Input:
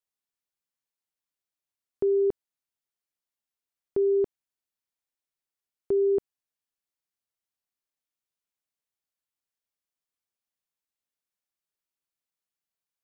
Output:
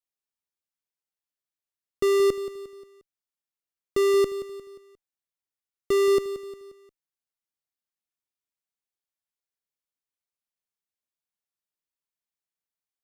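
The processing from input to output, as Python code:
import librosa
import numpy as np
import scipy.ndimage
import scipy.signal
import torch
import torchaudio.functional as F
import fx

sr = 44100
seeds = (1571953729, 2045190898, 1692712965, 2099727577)

p1 = fx.fuzz(x, sr, gain_db=50.0, gate_db=-58.0)
p2 = x + (p1 * librosa.db_to_amplitude(-7.0))
p3 = fx.echo_feedback(p2, sr, ms=177, feedback_pct=45, wet_db=-13)
y = p3 * librosa.db_to_amplitude(-4.5)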